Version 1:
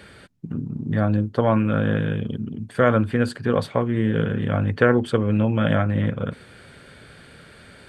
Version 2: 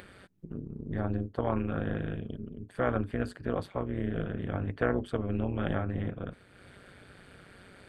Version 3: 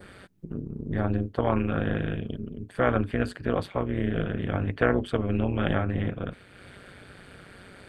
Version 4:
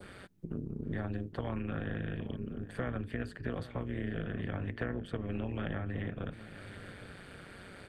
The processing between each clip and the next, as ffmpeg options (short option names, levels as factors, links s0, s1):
-af "acompressor=mode=upward:threshold=0.02:ratio=2.5,equalizer=f=5500:t=o:w=1.8:g=-4.5,tremolo=f=190:d=0.824,volume=0.422"
-af "adynamicequalizer=threshold=0.00178:dfrequency=2700:dqfactor=1.2:tfrequency=2700:tqfactor=1.2:attack=5:release=100:ratio=0.375:range=2.5:mode=boostabove:tftype=bell,volume=1.78"
-filter_complex "[0:a]adynamicequalizer=threshold=0.00251:dfrequency=1800:dqfactor=6.9:tfrequency=1800:tqfactor=6.9:attack=5:release=100:ratio=0.375:range=3.5:mode=boostabove:tftype=bell,acrossover=split=270|2700[s0][s1][s2];[s0]acompressor=threshold=0.02:ratio=4[s3];[s1]acompressor=threshold=0.0112:ratio=4[s4];[s2]acompressor=threshold=0.002:ratio=4[s5];[s3][s4][s5]amix=inputs=3:normalize=0,asplit=2[s6][s7];[s7]adelay=816.3,volume=0.2,highshelf=f=4000:g=-18.4[s8];[s6][s8]amix=inputs=2:normalize=0,volume=0.794"